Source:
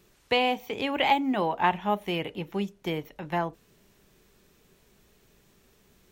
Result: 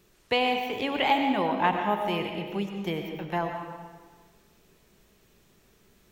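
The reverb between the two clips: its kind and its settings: digital reverb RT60 1.5 s, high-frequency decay 0.75×, pre-delay 60 ms, DRR 4 dB; gain -1 dB

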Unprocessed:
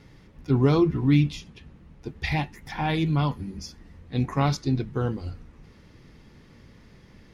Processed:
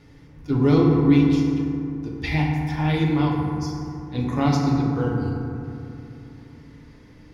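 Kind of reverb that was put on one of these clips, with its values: FDN reverb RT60 2.8 s, low-frequency decay 1.2×, high-frequency decay 0.35×, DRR -2 dB; gain -1.5 dB

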